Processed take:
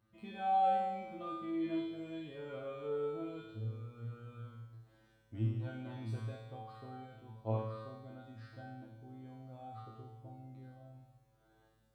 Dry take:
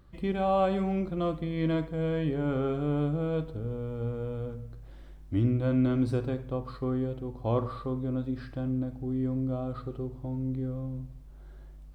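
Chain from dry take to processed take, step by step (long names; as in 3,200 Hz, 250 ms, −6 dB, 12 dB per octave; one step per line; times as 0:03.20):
high-pass filter 87 Hz 12 dB per octave
tuned comb filter 110 Hz, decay 0.99 s, harmonics all, mix 100%
on a send: convolution reverb RT60 0.60 s, pre-delay 81 ms, DRR 13 dB
on the sum: level +6 dB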